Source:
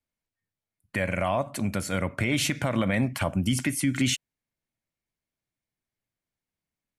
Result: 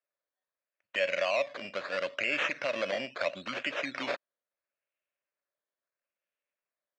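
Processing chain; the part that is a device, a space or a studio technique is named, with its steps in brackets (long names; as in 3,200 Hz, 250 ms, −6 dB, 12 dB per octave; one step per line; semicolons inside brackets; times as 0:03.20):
circuit-bent sampling toy (sample-and-hold swept by an LFO 13×, swing 60% 0.75 Hz; loudspeaker in its box 540–5,000 Hz, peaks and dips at 570 Hz +10 dB, 830 Hz −8 dB, 1,700 Hz +4 dB, 2,600 Hz +8 dB)
level −4.5 dB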